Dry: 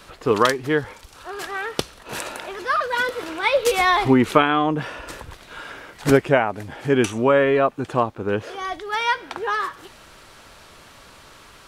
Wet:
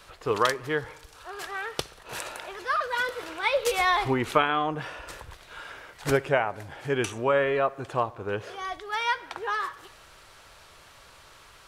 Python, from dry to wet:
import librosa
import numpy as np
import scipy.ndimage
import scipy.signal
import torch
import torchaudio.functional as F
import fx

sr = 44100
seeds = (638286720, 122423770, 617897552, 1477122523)

y = fx.peak_eq(x, sr, hz=240.0, db=-9.0, octaves=1.1)
y = fx.echo_bbd(y, sr, ms=64, stages=1024, feedback_pct=68, wet_db=-22.5)
y = y * librosa.db_to_amplitude(-5.0)